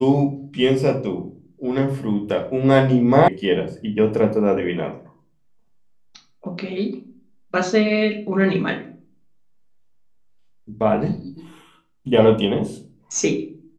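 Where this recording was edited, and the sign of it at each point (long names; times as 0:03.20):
0:03.28: cut off before it has died away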